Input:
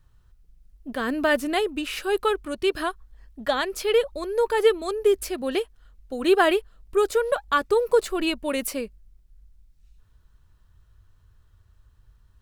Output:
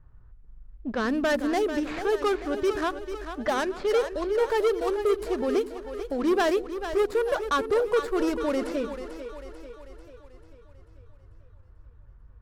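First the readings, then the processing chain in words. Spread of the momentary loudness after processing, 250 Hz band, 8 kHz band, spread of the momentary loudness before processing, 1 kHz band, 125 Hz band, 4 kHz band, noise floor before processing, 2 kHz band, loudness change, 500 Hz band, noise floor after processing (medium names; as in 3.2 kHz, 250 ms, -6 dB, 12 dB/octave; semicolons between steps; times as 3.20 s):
13 LU, +0.5 dB, -6.5 dB, 10 LU, -2.5 dB, no reading, -6.5 dB, -59 dBFS, -4.0 dB, -2.5 dB, -2.0 dB, -52 dBFS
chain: median filter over 15 samples; level-controlled noise filter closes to 2.1 kHz, open at -20.5 dBFS; in parallel at -2.5 dB: compression, threshold -34 dBFS, peak gain reduction 19 dB; on the sum: saturation -18.5 dBFS, distortion -11 dB; on a send: two-band feedback delay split 320 Hz, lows 83 ms, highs 442 ms, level -9.5 dB; on the sum: warped record 45 rpm, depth 100 cents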